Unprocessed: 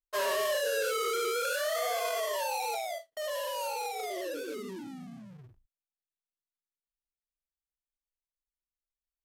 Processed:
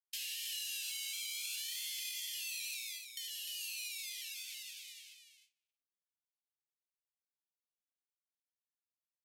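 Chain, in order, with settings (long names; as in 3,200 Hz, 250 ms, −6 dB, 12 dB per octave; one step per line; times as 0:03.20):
noise gate with hold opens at −37 dBFS
Butterworth high-pass 2,400 Hz 48 dB per octave
downward compressor 2.5 to 1, threshold −54 dBFS, peak gain reduction 12 dB
single-tap delay 302 ms −7 dB
level +8.5 dB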